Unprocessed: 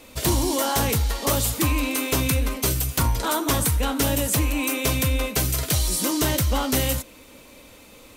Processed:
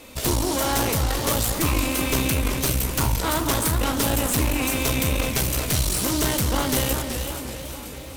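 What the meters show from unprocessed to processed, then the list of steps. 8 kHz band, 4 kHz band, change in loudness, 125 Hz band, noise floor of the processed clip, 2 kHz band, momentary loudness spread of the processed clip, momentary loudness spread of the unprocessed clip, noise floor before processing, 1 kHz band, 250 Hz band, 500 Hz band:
0.0 dB, +0.5 dB, 0.0 dB, -0.5 dB, -36 dBFS, +1.0 dB, 5 LU, 2 LU, -48 dBFS, +0.5 dB, +0.5 dB, +0.5 dB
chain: echo with dull and thin repeats by turns 0.241 s, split 2300 Hz, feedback 76%, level -12 dB; one-sided clip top -34 dBFS; warbling echo 0.379 s, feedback 43%, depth 129 cents, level -8 dB; gain +2.5 dB

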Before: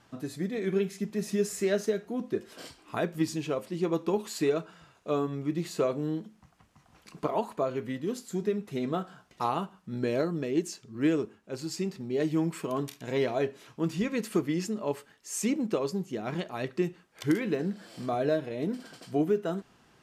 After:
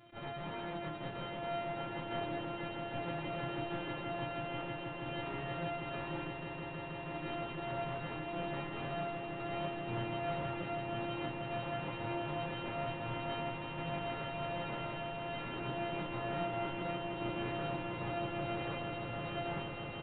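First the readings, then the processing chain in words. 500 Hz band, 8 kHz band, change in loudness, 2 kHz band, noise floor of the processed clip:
-10.0 dB, under -40 dB, -8.5 dB, -1.0 dB, -43 dBFS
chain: sample sorter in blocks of 128 samples; HPF 75 Hz 12 dB/oct; comb 7.4 ms, depth 58%; negative-ratio compressor -32 dBFS, ratio -0.5; tube stage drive 41 dB, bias 0.55; chorus voices 2, 0.15 Hz, delay 29 ms, depth 4.4 ms; resonator 310 Hz, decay 0.82 s, mix 80%; swelling echo 0.16 s, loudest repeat 8, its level -10 dB; downsampling 8000 Hz; attack slew limiter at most 250 dB/s; gain +18 dB

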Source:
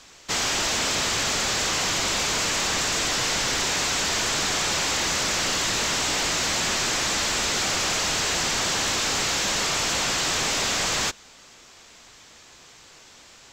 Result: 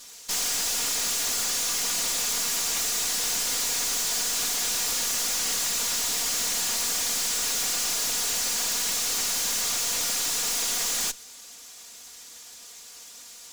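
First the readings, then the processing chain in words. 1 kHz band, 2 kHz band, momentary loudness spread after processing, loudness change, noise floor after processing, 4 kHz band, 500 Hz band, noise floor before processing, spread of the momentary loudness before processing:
-9.5 dB, -8.5 dB, 19 LU, -1.5 dB, -46 dBFS, -4.0 dB, -10.0 dB, -50 dBFS, 0 LU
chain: minimum comb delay 4.2 ms; tone controls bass -4 dB, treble +13 dB; overloaded stage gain 22.5 dB; gain -2.5 dB

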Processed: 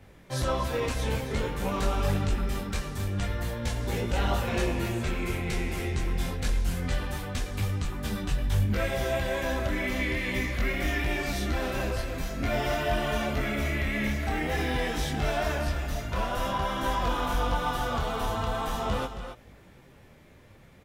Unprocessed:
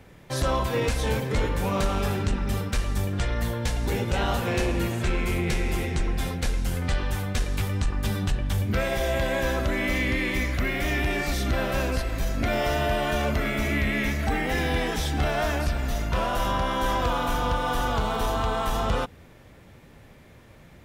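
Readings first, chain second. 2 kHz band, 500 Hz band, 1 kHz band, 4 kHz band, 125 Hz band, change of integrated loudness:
-3.5 dB, -3.0 dB, -3.0 dB, -3.0 dB, -3.0 dB, -3.0 dB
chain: echo 0.271 s -10 dB; detuned doubles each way 16 cents

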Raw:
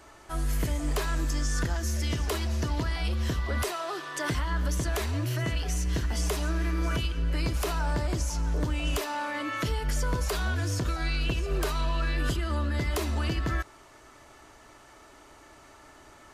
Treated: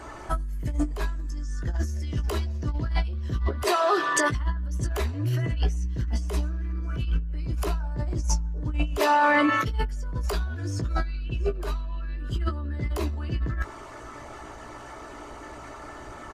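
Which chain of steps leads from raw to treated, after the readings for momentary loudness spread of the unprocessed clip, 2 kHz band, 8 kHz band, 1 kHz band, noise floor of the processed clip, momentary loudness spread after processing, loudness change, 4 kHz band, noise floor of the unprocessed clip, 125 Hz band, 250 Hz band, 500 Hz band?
2 LU, +3.5 dB, -1.0 dB, +7.0 dB, -42 dBFS, 19 LU, +2.0 dB, -2.5 dB, -53 dBFS, +1.0 dB, +2.0 dB, +4.0 dB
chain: formant sharpening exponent 1.5; negative-ratio compressor -32 dBFS, ratio -0.5; doubler 17 ms -7.5 dB; gain +5.5 dB

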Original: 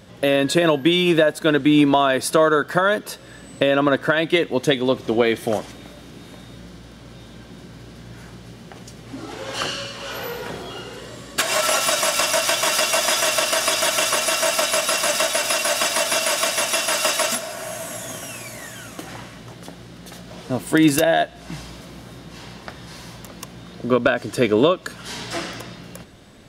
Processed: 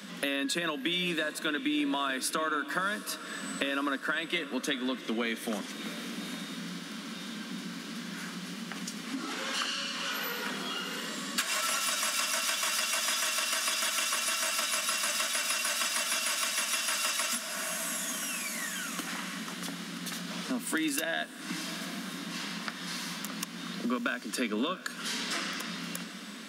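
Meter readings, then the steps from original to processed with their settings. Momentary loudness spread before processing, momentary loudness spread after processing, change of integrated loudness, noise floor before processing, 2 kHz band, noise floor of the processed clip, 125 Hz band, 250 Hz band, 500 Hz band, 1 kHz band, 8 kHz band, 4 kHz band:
20 LU, 10 LU, -12.5 dB, -42 dBFS, -8.0 dB, -43 dBFS, -15.0 dB, -12.0 dB, -19.0 dB, -11.5 dB, -8.0 dB, -8.0 dB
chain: steep high-pass 180 Hz 96 dB/oct; band shelf 540 Hz -11 dB; compressor 3:1, threshold -40 dBFS, peak gain reduction 17.5 dB; diffused feedback echo 0.712 s, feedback 43%, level -14 dB; gain +6 dB

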